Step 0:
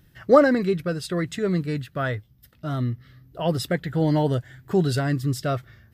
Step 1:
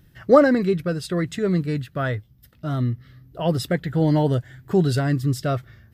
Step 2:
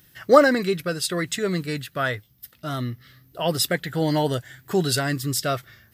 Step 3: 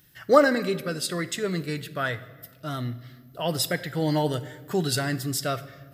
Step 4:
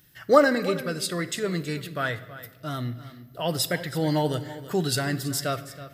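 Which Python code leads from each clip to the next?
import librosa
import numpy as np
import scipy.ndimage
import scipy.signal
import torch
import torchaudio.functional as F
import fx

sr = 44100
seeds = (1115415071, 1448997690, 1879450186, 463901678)

y1 = fx.low_shelf(x, sr, hz=460.0, db=3.0)
y2 = fx.tilt_eq(y1, sr, slope=3.0)
y2 = y2 * librosa.db_to_amplitude(2.0)
y3 = fx.room_shoebox(y2, sr, seeds[0], volume_m3=1100.0, walls='mixed', distance_m=0.4)
y3 = y3 * librosa.db_to_amplitude(-3.5)
y4 = y3 + 10.0 ** (-15.5 / 20.0) * np.pad(y3, (int(325 * sr / 1000.0), 0))[:len(y3)]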